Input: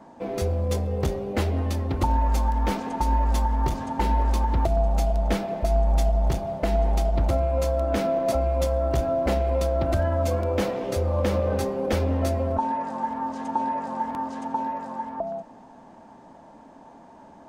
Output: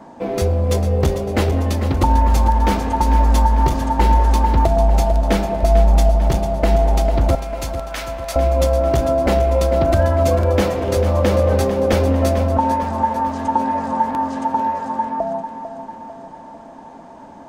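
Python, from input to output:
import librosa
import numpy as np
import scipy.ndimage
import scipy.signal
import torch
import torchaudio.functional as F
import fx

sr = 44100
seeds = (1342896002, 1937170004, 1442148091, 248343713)

y = fx.highpass(x, sr, hz=1300.0, slope=12, at=(7.35, 8.36))
y = fx.echo_feedback(y, sr, ms=447, feedback_pct=54, wet_db=-10.5)
y = y * 10.0 ** (7.5 / 20.0)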